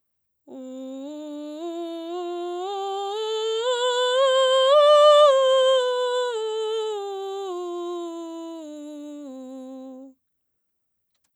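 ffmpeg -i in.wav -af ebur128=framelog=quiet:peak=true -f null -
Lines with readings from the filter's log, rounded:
Integrated loudness:
  I:         -21.0 LUFS
  Threshold: -32.9 LUFS
Loudness range:
  LRA:        17.7 LU
  Threshold: -42.1 LUFS
  LRA low:   -35.8 LUFS
  LRA high:  -18.1 LUFS
True peak:
  Peak:       -5.3 dBFS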